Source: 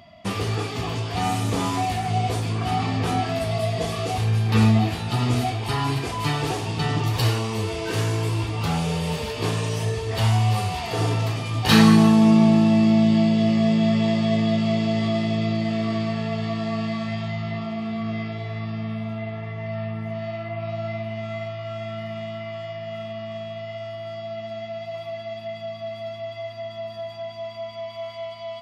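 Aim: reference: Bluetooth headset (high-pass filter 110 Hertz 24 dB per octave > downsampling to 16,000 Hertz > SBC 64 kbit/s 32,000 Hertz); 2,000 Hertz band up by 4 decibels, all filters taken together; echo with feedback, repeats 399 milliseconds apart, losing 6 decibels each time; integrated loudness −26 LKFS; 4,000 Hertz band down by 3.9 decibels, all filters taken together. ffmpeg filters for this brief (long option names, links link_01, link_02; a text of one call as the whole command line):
ffmpeg -i in.wav -af "highpass=frequency=110:width=0.5412,highpass=frequency=110:width=1.3066,equalizer=frequency=2000:width_type=o:gain=7,equalizer=frequency=4000:width_type=o:gain=-8,aecho=1:1:399|798|1197|1596|1995|2394:0.501|0.251|0.125|0.0626|0.0313|0.0157,aresample=16000,aresample=44100,volume=-2.5dB" -ar 32000 -c:a sbc -b:a 64k out.sbc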